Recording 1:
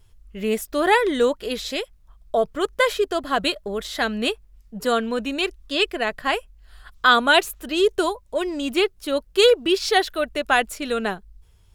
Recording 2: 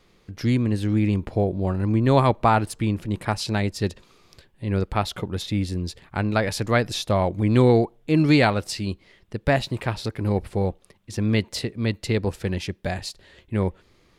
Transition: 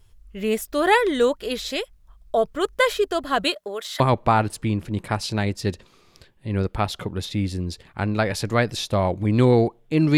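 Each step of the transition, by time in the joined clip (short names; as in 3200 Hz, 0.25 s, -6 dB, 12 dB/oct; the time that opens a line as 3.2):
recording 1
3.43–4 HPF 150 Hz -> 1000 Hz
4 switch to recording 2 from 2.17 s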